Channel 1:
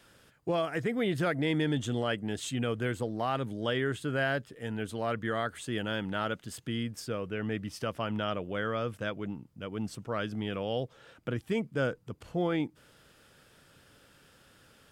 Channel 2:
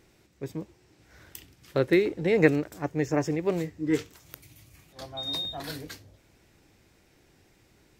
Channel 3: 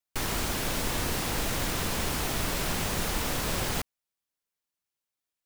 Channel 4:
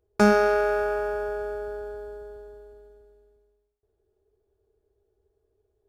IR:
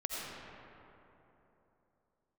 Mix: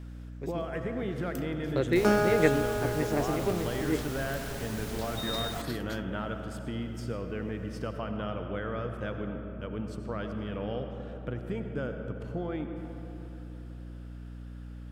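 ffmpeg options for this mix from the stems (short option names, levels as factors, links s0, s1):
-filter_complex "[0:a]highshelf=f=2700:g=-10,acompressor=threshold=0.0251:ratio=6,volume=0.708,asplit=2[s0][s1];[s1]volume=0.668[s2];[1:a]volume=0.596[s3];[2:a]adelay=1800,volume=0.266[s4];[3:a]adelay=1850,volume=0.473[s5];[4:a]atrim=start_sample=2205[s6];[s2][s6]afir=irnorm=-1:irlink=0[s7];[s0][s3][s4][s5][s7]amix=inputs=5:normalize=0,aeval=exprs='val(0)+0.00891*(sin(2*PI*60*n/s)+sin(2*PI*2*60*n/s)/2+sin(2*PI*3*60*n/s)/3+sin(2*PI*4*60*n/s)/4+sin(2*PI*5*60*n/s)/5)':c=same"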